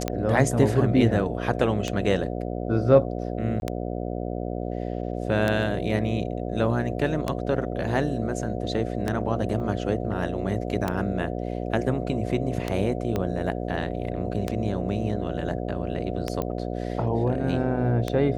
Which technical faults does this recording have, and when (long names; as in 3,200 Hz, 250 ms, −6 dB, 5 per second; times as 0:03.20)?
mains buzz 60 Hz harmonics 12 −30 dBFS
scratch tick 33 1/3 rpm −11 dBFS
0:03.60–0:03.62: drop-out 21 ms
0:09.60: drop-out 2.3 ms
0:13.16: click −14 dBFS
0:16.42: click −15 dBFS